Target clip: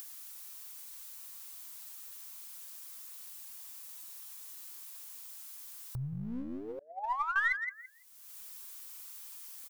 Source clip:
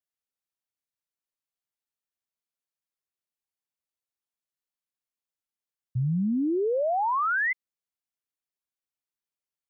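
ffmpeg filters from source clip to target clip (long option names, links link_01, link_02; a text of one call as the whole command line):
ffmpeg -i in.wav -filter_complex "[0:a]flanger=delay=6.3:depth=2.1:regen=51:speed=1.2:shape=triangular,asplit=2[link_01][link_02];[link_02]adelay=167,lowpass=frequency=870:poles=1,volume=-4dB,asplit=2[link_03][link_04];[link_04]adelay=167,lowpass=frequency=870:poles=1,volume=0.17,asplit=2[link_05][link_06];[link_06]adelay=167,lowpass=frequency=870:poles=1,volume=0.17[link_07];[link_01][link_03][link_05][link_07]amix=inputs=4:normalize=0,crystalizer=i=3.5:c=0,acompressor=mode=upward:threshold=-33dB:ratio=2.5,equalizer=frequency=125:width_type=o:width=1:gain=-3,equalizer=frequency=250:width_type=o:width=1:gain=11,equalizer=frequency=500:width_type=o:width=1:gain=-7,equalizer=frequency=1000:width_type=o:width=1:gain=8,asettb=1/sr,asplit=3[link_08][link_09][link_10];[link_08]atrim=end=6.794[link_11];[link_09]atrim=start=6.79:end=7.36,asetpts=PTS-STARTPTS,afade=type=in:duration=0.004:curve=qsin,afade=type=out:start_time=0.566:duration=0.004:curve=qsin,agate=range=-33dB:threshold=-14dB:ratio=3:detection=peak[link_12];[link_10]atrim=start=7.356[link_13];[link_11][link_12]acrossfade=duration=0.004:curve1=hsin:curve2=qsin[link_14];[link_14][link_13]acrossfade=duration=0.004:curve1=qsin:curve2=hsin,asplit=2[link_15][link_16];[link_16]aeval=exprs='clip(val(0),-1,0.0211)':channel_layout=same,volume=-10dB[link_17];[link_15][link_17]amix=inputs=2:normalize=0,acompressor=threshold=-39dB:ratio=2,equalizer=frequency=260:width_type=o:width=2.2:gain=-14.5,volume=5dB" out.wav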